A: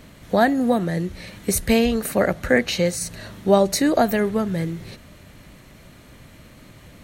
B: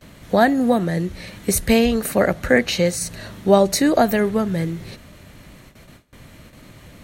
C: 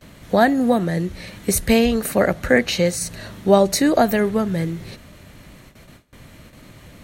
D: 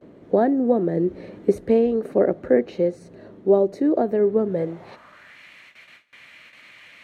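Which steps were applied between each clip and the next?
gate with hold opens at -36 dBFS; trim +2 dB
no audible change
band-pass sweep 380 Hz -> 2.3 kHz, 4.44–5.42 s; gain riding within 5 dB 0.5 s; trim +4.5 dB

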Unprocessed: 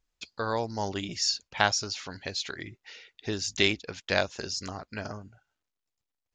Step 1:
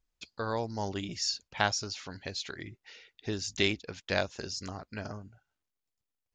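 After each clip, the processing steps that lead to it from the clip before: bass shelf 380 Hz +4 dB; trim -4.5 dB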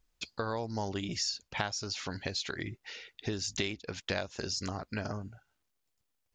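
compression 5:1, threshold -38 dBFS, peak gain reduction 15 dB; trim +6.5 dB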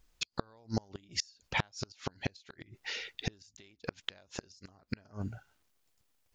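inverted gate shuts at -25 dBFS, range -31 dB; trim +6.5 dB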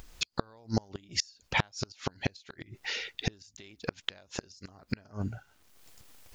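upward compressor, threshold -43 dBFS; trim +4 dB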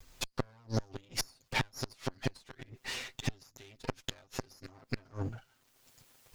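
comb filter that takes the minimum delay 7.7 ms; trim -2.5 dB

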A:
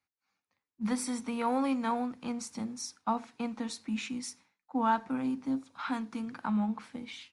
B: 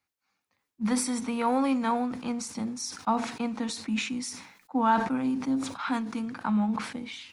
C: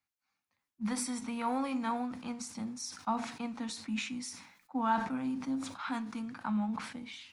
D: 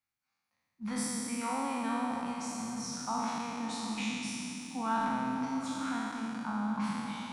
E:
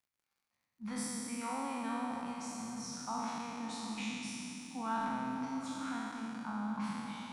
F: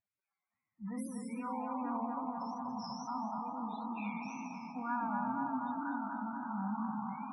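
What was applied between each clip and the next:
decay stretcher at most 78 dB/s; trim +4 dB
peaking EQ 420 Hz -6.5 dB 0.71 oct; flange 0.29 Hz, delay 6.6 ms, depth 6.3 ms, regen -80%; trim -1.5 dB
spectral sustain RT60 2.76 s; repeats whose band climbs or falls 141 ms, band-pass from 150 Hz, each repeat 0.7 oct, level -0.5 dB; trim -5 dB
crackle 79 per s -61 dBFS; trim -4.5 dB
wow and flutter 120 cents; loudest bins only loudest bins 16; band-passed feedback delay 241 ms, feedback 82%, band-pass 910 Hz, level -3 dB

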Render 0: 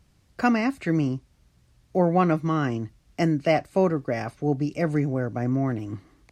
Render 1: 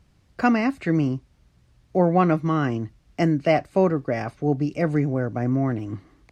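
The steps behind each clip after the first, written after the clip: treble shelf 6.1 kHz -8 dB; trim +2 dB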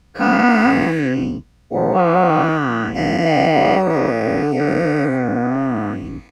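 every event in the spectrogram widened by 480 ms; comb 4.1 ms, depth 37%; trim -1 dB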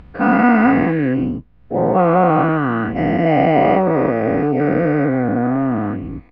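in parallel at -4 dB: hysteresis with a dead band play -28 dBFS; on the sum: distance through air 490 m; upward compressor, threshold -26 dBFS; trim -2 dB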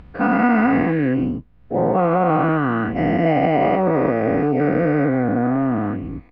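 peak limiter -6.5 dBFS, peak gain reduction 5 dB; trim -1.5 dB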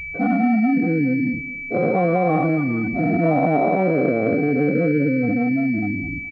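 spectral gate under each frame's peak -10 dB strong; feedback delay 210 ms, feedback 33%, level -16.5 dB; class-D stage that switches slowly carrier 2.3 kHz

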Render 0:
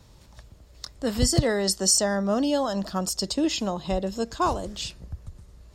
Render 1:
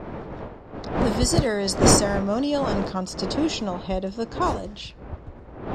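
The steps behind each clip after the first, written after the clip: wind noise 570 Hz -28 dBFS; level-controlled noise filter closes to 2.3 kHz, open at -15.5 dBFS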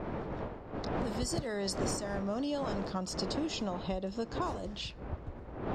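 compression 8:1, threshold -28 dBFS, peak gain reduction 17.5 dB; trim -3 dB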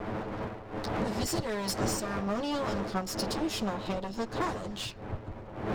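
comb filter that takes the minimum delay 9.3 ms; trim +4.5 dB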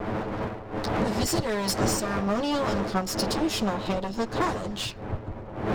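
tape noise reduction on one side only decoder only; trim +5.5 dB

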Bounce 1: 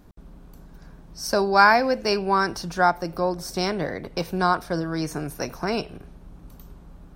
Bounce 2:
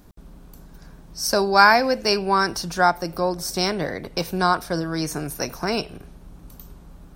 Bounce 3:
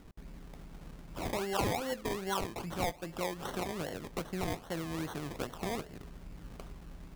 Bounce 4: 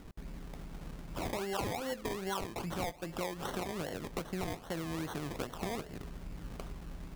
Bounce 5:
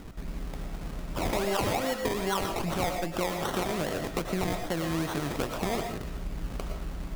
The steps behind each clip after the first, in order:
treble shelf 3.9 kHz +7.5 dB; trim +1 dB
compression 2:1, threshold -36 dBFS, peak gain reduction 15 dB; decimation with a swept rate 25×, swing 60% 2.5 Hz; trim -4 dB
compression 2.5:1, threshold -39 dBFS, peak gain reduction 8.5 dB; trim +3.5 dB
reverberation RT60 0.35 s, pre-delay 75 ms, DRR 4.5 dB; trim +7 dB

